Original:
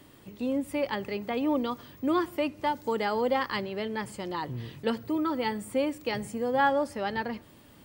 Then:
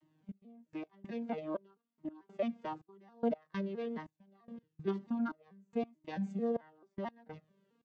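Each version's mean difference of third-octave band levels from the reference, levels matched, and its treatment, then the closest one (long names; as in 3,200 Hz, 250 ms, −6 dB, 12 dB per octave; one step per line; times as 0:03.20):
14.0 dB: vocoder with an arpeggio as carrier major triad, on D#3, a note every 220 ms
noise gate −42 dBFS, range −9 dB
gate pattern "xxx....x..xx" 144 BPM −24 dB
flanger whose copies keep moving one way falling 1 Hz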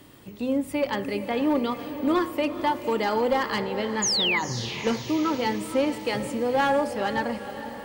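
4.5 dB: hum removal 83.85 Hz, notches 30
asymmetric clip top −21 dBFS
sound drawn into the spectrogram fall, 0:04.02–0:04.39, 1,900–7,200 Hz −28 dBFS
on a send: feedback delay with all-pass diffusion 468 ms, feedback 54%, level −11 dB
on the sum: level +4 dB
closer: second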